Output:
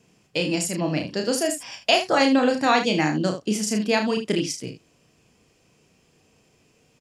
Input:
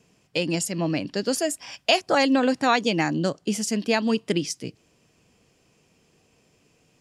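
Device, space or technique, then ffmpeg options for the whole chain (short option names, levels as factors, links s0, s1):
slapback doubling: -filter_complex "[0:a]asplit=3[s0][s1][s2];[s1]adelay=33,volume=0.562[s3];[s2]adelay=76,volume=0.299[s4];[s0][s3][s4]amix=inputs=3:normalize=0"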